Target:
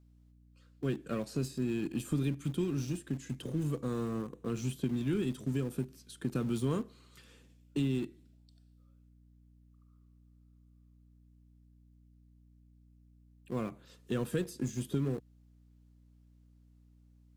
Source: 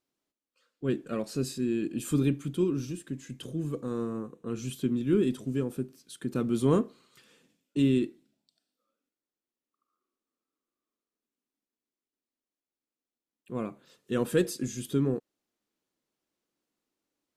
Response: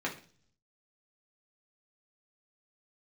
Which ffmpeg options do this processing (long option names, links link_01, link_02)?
-filter_complex "[0:a]adynamicequalizer=threshold=0.0112:dfrequency=130:dqfactor=1.7:tfrequency=130:tqfactor=1.7:attack=5:release=100:ratio=0.375:range=1.5:mode=boostabove:tftype=bell,acrossover=split=150|1400[link_01][link_02][link_03];[link_01]acompressor=threshold=-39dB:ratio=4[link_04];[link_02]acompressor=threshold=-36dB:ratio=4[link_05];[link_03]acompressor=threshold=-49dB:ratio=4[link_06];[link_04][link_05][link_06]amix=inputs=3:normalize=0,aeval=exprs='val(0)+0.001*(sin(2*PI*60*n/s)+sin(2*PI*2*60*n/s)/2+sin(2*PI*3*60*n/s)/3+sin(2*PI*4*60*n/s)/4+sin(2*PI*5*60*n/s)/5)':channel_layout=same,asplit=2[link_07][link_08];[link_08]aeval=exprs='val(0)*gte(abs(val(0)),0.0119)':channel_layout=same,volume=-10.5dB[link_09];[link_07][link_09]amix=inputs=2:normalize=0"